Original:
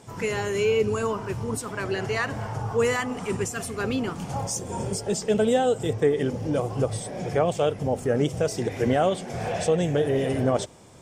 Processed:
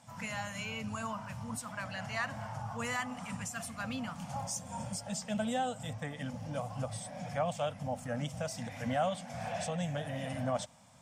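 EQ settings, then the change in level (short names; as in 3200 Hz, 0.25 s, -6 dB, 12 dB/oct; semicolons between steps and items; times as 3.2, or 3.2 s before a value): Chebyshev band-stop 230–630 Hz, order 2; low shelf 78 Hz -11 dB; -7.0 dB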